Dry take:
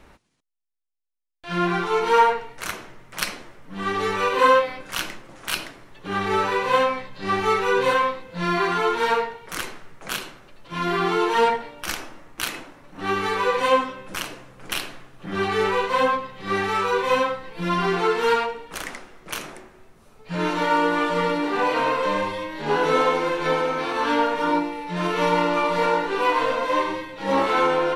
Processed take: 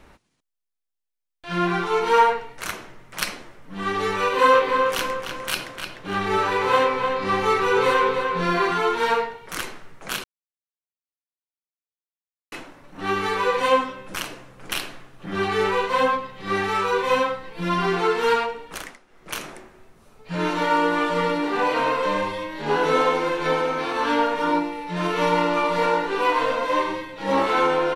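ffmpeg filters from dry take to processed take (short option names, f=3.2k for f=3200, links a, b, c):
-filter_complex "[0:a]asplit=3[a][b][c];[a]afade=t=out:st=4.52:d=0.02[d];[b]asplit=2[e][f];[f]adelay=301,lowpass=f=4.2k:p=1,volume=-5dB,asplit=2[g][h];[h]adelay=301,lowpass=f=4.2k:p=1,volume=0.42,asplit=2[i][j];[j]adelay=301,lowpass=f=4.2k:p=1,volume=0.42,asplit=2[k][l];[l]adelay=301,lowpass=f=4.2k:p=1,volume=0.42,asplit=2[m][n];[n]adelay=301,lowpass=f=4.2k:p=1,volume=0.42[o];[e][g][i][k][m][o]amix=inputs=6:normalize=0,afade=t=in:st=4.52:d=0.02,afade=t=out:st=8.7:d=0.02[p];[c]afade=t=in:st=8.7:d=0.02[q];[d][p][q]amix=inputs=3:normalize=0,asplit=5[r][s][t][u][v];[r]atrim=end=10.24,asetpts=PTS-STARTPTS,afade=t=out:st=10.236:d=0.004:c=hsin[w];[s]atrim=start=10.24:end=12.52,asetpts=PTS-STARTPTS,volume=0[x];[t]atrim=start=12.52:end=18.98,asetpts=PTS-STARTPTS,afade=t=in:d=0.004:c=hsin,afade=t=out:st=6.21:d=0.25:silence=0.188365[y];[u]atrim=start=18.98:end=19.07,asetpts=PTS-STARTPTS,volume=-14.5dB[z];[v]atrim=start=19.07,asetpts=PTS-STARTPTS,afade=t=in:d=0.25:silence=0.188365[aa];[w][x][y][z][aa]concat=n=5:v=0:a=1"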